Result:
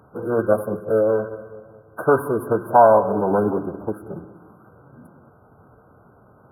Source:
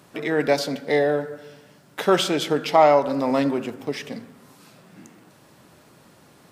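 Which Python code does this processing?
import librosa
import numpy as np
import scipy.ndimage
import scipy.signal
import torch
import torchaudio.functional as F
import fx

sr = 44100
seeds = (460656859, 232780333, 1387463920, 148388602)

p1 = fx.wiener(x, sr, points=9)
p2 = fx.quant_float(p1, sr, bits=6)
p3 = fx.echo_bbd(p2, sr, ms=181, stages=1024, feedback_pct=45, wet_db=-17.0)
p4 = fx.pitch_keep_formants(p3, sr, semitones=-5.0)
p5 = fx.brickwall_bandstop(p4, sr, low_hz=1600.0, high_hz=9500.0)
p6 = fx.peak_eq(p5, sr, hz=310.0, db=-3.0, octaves=1.5)
p7 = p6 + fx.echo_feedback(p6, sr, ms=195, feedback_pct=60, wet_db=-23.5, dry=0)
y = p7 * librosa.db_to_amplitude(4.0)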